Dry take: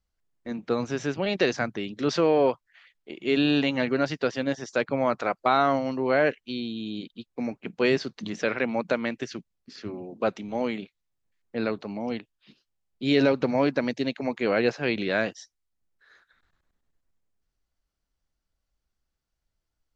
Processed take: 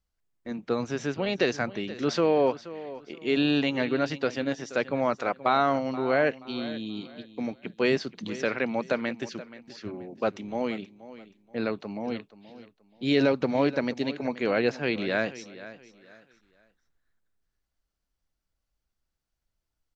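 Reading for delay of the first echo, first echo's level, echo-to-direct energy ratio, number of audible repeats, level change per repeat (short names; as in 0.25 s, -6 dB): 0.478 s, -16.0 dB, -15.5 dB, 2, -10.5 dB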